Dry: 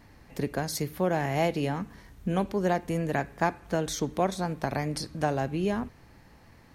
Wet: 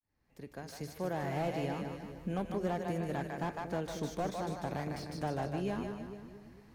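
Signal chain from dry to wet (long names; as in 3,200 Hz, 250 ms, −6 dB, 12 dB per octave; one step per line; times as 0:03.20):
fade in at the beginning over 1.31 s
echo with a time of its own for lows and highs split 500 Hz, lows 229 ms, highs 152 ms, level −6 dB
slew-rate limiting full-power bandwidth 53 Hz
level −8 dB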